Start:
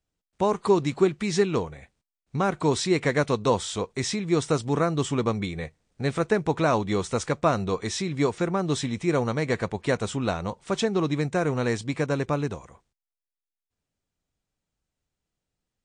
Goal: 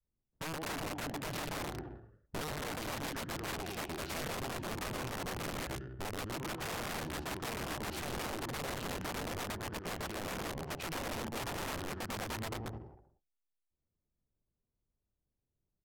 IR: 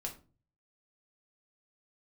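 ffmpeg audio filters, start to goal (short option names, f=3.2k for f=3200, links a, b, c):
-filter_complex "[0:a]adynamicequalizer=threshold=0.0251:dfrequency=340:dqfactor=1.1:tfrequency=340:tqfactor=1.1:attack=5:release=100:ratio=0.375:range=2:mode=cutabove:tftype=bell,acompressor=threshold=-30dB:ratio=20,asplit=2[a][b];[b]aecho=0:1:120|216|292.8|354.2|403.4:0.631|0.398|0.251|0.158|0.1[c];[a][c]amix=inputs=2:normalize=0,adynamicsmooth=sensitivity=7:basefreq=980,aeval=exprs='(mod(33.5*val(0)+1,2)-1)/33.5':c=same,asetrate=34006,aresample=44100,atempo=1.29684,volume=-3dB"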